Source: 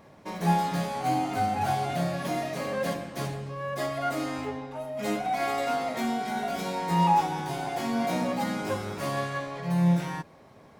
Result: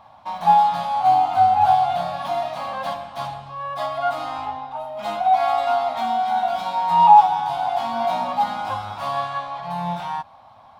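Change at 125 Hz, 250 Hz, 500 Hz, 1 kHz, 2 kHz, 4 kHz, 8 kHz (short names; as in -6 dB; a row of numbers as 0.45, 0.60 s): -7.5 dB, -8.5 dB, +4.0 dB, +12.0 dB, +0.5 dB, +4.0 dB, n/a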